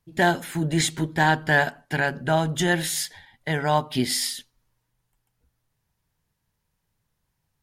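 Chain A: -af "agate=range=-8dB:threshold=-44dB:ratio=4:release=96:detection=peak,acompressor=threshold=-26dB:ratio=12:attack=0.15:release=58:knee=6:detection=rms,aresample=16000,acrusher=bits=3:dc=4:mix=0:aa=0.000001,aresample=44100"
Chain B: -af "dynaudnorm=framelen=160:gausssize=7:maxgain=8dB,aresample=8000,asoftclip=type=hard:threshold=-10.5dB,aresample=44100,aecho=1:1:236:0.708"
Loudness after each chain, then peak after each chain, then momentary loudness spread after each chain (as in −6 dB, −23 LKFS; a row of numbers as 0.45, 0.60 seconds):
−37.5, −19.0 LKFS; −21.5, −4.5 dBFS; 4, 8 LU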